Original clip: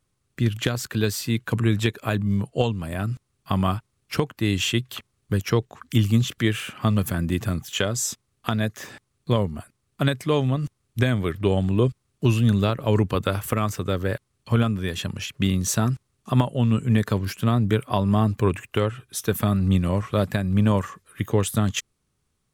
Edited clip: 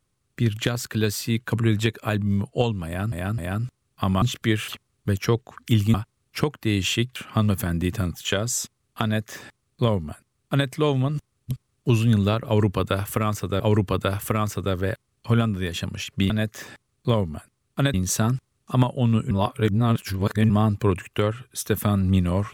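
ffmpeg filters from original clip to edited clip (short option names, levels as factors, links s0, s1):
-filter_complex "[0:a]asplit=13[s0][s1][s2][s3][s4][s5][s6][s7][s8][s9][s10][s11][s12];[s0]atrim=end=3.122[s13];[s1]atrim=start=2.858:end=3.122[s14];[s2]atrim=start=2.858:end=3.702[s15];[s3]atrim=start=6.178:end=6.642[s16];[s4]atrim=start=4.918:end=6.182[s17];[s5]atrim=start=3.698:end=4.922[s18];[s6]atrim=start=6.638:end=10.992[s19];[s7]atrim=start=11.868:end=13.962[s20];[s8]atrim=start=12.818:end=15.522[s21];[s9]atrim=start=8.518:end=10.162[s22];[s10]atrim=start=15.518:end=16.892[s23];[s11]atrim=start=16.888:end=18.082,asetpts=PTS-STARTPTS,areverse[s24];[s12]atrim=start=18.078[s25];[s13][s14]acrossfade=d=0.004:c1=hsin:c2=hsin[s26];[s26][s15]acrossfade=d=0.004:c1=hsin:c2=hsin[s27];[s27][s16]acrossfade=d=0.004:c1=hsin:c2=hsin[s28];[s28][s17]acrossfade=d=0.004:c1=hsin:c2=hsin[s29];[s29][s18]acrossfade=d=0.004:c1=hsin:c2=hsin[s30];[s30][s19]acrossfade=d=0.004:c1=hsin:c2=hsin[s31];[s31][s20]acrossfade=d=0.004:c1=hsin:c2=hsin[s32];[s32][s21]acrossfade=d=0.004:c1=hsin:c2=hsin[s33];[s33][s22]acrossfade=d=0.004:c1=hsin:c2=hsin[s34];[s34][s23]acrossfade=d=0.004:c1=hsin:c2=hsin[s35];[s35][s24]acrossfade=d=0.004:c1=hsin:c2=hsin[s36];[s36][s25]acrossfade=d=0.004:c1=hsin:c2=hsin"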